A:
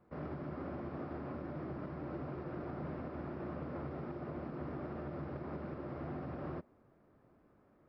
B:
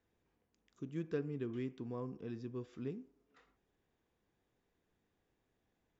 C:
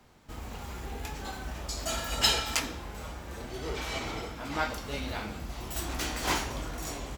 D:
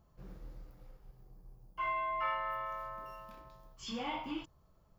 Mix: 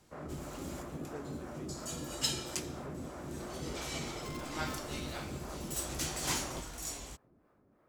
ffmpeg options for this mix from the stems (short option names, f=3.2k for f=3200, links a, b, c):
-filter_complex "[0:a]acrossover=split=450[a][b];[a]aeval=exprs='val(0)*(1-0.7/2+0.7/2*cos(2*PI*3*n/s))':c=same[c];[b]aeval=exprs='val(0)*(1-0.7/2-0.7/2*cos(2*PI*3*n/s))':c=same[d];[c][d]amix=inputs=2:normalize=0,volume=2.5dB[e];[1:a]volume=-8.5dB,asplit=2[f][g];[2:a]equalizer=f=8.6k:w=0.54:g=12.5,volume=-9.5dB[h];[3:a]highpass=f=740:w=0.5412,highpass=f=740:w=1.3066,acrusher=bits=6:dc=4:mix=0:aa=0.000001,adelay=2450,volume=-12dB[i];[g]apad=whole_len=316203[j];[h][j]sidechaincompress=threshold=-55dB:ratio=5:attack=20:release=657[k];[e][f][k][i]amix=inputs=4:normalize=0"